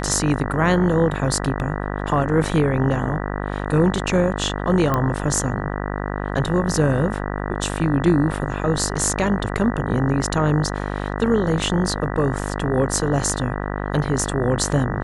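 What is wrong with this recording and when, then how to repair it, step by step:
buzz 50 Hz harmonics 39 -26 dBFS
4.94 s: pop -8 dBFS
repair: de-click; de-hum 50 Hz, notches 39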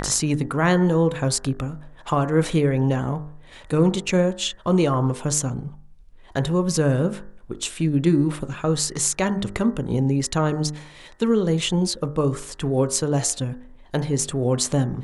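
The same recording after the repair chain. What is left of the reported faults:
nothing left

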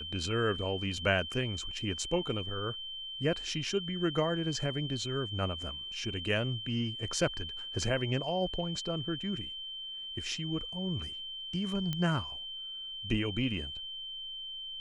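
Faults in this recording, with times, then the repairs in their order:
whine 3.1 kHz -39 dBFS
11.93 s: pop -20 dBFS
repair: de-click; band-stop 3.1 kHz, Q 30

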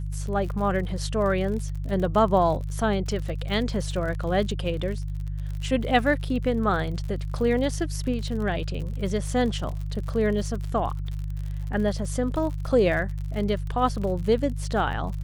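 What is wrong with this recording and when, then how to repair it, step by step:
crackle 53 per s -33 dBFS
hum 50 Hz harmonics 3 -30 dBFS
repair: de-click; de-hum 50 Hz, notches 3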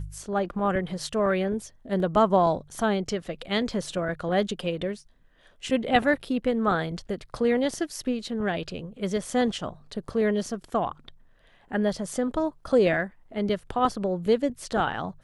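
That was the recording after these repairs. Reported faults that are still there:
nothing left

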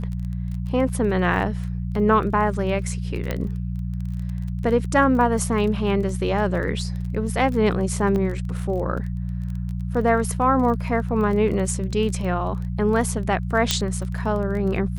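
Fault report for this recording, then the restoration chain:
crackle 22 per s -30 dBFS
hum 60 Hz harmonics 3 -27 dBFS
3.31 s: pop -12 dBFS
8.16 s: dropout 2.2 ms
13.71 s: pop -3 dBFS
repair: de-click; de-hum 60 Hz, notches 3; interpolate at 8.16 s, 2.2 ms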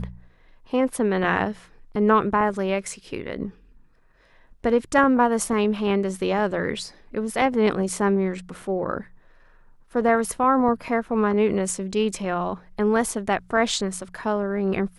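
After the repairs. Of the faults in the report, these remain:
nothing left

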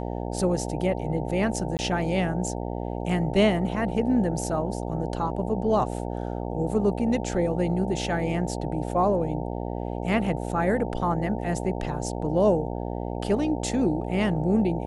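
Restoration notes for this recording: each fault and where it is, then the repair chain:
buzz 60 Hz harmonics 15 -31 dBFS
1.77–1.79 s: dropout 19 ms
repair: de-hum 60 Hz, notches 15; interpolate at 1.77 s, 19 ms

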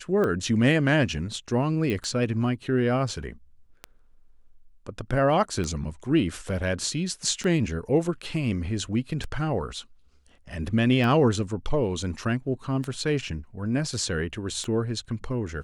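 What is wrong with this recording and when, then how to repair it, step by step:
tick 33 1/3 rpm -17 dBFS
1.90 s: pop -17 dBFS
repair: de-click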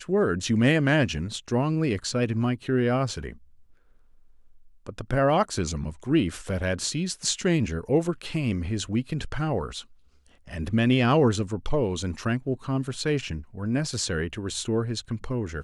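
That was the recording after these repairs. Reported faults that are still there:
1.90 s: pop

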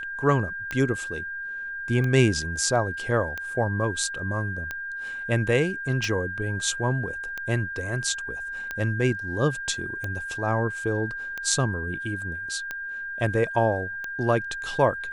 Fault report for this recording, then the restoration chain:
tick 45 rpm -17 dBFS
whine 1.6 kHz -31 dBFS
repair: de-click; band-stop 1.6 kHz, Q 30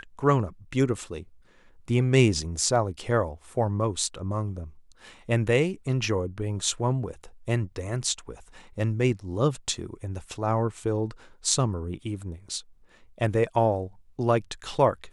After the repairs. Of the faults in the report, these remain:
nothing left

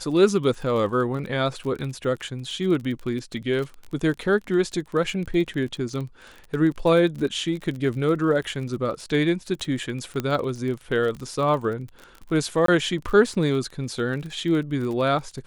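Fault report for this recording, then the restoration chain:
crackle 31 per s -31 dBFS
10.20 s: pop -13 dBFS
12.66–12.68 s: dropout 23 ms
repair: de-click; interpolate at 12.66 s, 23 ms

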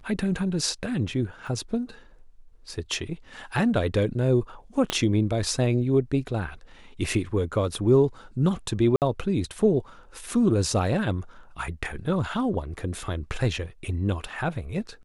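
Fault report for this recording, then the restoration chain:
1.47 s: dropout 3.4 ms
4.90 s: pop -9 dBFS
8.96–9.02 s: dropout 58 ms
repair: de-click; interpolate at 1.47 s, 3.4 ms; interpolate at 8.96 s, 58 ms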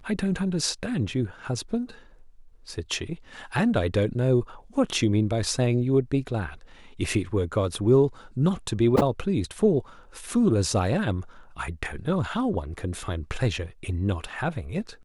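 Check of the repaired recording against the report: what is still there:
4.90 s: pop

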